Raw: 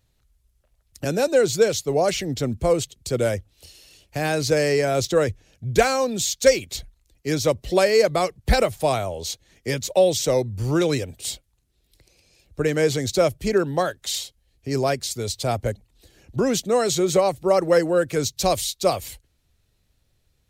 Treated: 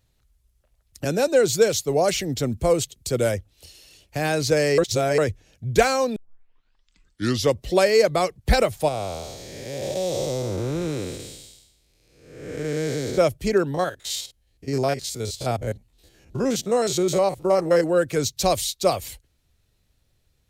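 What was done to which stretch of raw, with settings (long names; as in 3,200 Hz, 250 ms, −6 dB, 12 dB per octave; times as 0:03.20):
0:01.45–0:03.32: high-shelf EQ 8,000 Hz +5.5 dB
0:04.78–0:05.18: reverse
0:06.16: tape start 1.43 s
0:08.88–0:13.18: spectrum smeared in time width 454 ms
0:13.74–0:17.84: spectrum averaged block by block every 50 ms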